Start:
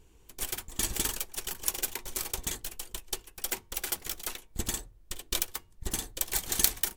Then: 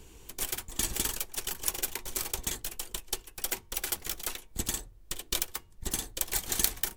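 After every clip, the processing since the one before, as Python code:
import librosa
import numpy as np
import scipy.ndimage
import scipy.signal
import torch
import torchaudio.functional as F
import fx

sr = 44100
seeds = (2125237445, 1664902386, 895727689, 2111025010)

y = fx.band_squash(x, sr, depth_pct=40)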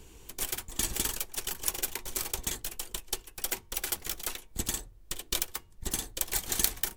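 y = x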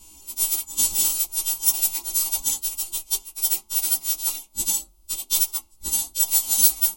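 y = fx.freq_snap(x, sr, grid_st=2)
y = fx.chorus_voices(y, sr, voices=2, hz=1.2, base_ms=14, depth_ms=3.8, mix_pct=45)
y = fx.fixed_phaser(y, sr, hz=460.0, stages=6)
y = F.gain(torch.from_numpy(y), 5.0).numpy()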